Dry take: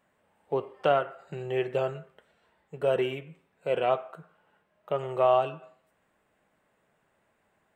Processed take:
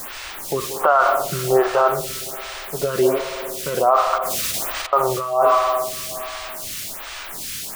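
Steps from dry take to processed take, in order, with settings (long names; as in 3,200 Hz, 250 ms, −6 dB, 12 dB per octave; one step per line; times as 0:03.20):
high shelf with overshoot 1,700 Hz −13 dB, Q 3
background noise pink −52 dBFS
0:04.18–0:04.93: compressor whose output falls as the input rises −52 dBFS, ratio −0.5
tilt shelving filter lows −8.5 dB, about 940 Hz
notch filter 470 Hz, Q 12
spring reverb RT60 2.6 s, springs 58 ms, chirp 50 ms, DRR 13 dB
boost into a limiter +23.5 dB
phaser with staggered stages 1.3 Hz
level −3.5 dB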